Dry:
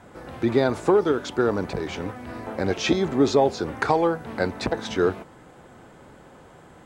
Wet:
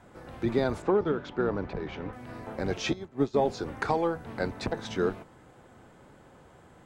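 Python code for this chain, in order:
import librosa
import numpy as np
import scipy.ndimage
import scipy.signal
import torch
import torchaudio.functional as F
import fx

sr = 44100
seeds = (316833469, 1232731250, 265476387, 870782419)

y = fx.octave_divider(x, sr, octaves=1, level_db=-5.0)
y = fx.lowpass(y, sr, hz=3100.0, slope=12, at=(0.82, 2.13))
y = fx.upward_expand(y, sr, threshold_db=-28.0, expansion=2.5, at=(2.9, 3.34), fade=0.02)
y = F.gain(torch.from_numpy(y), -6.5).numpy()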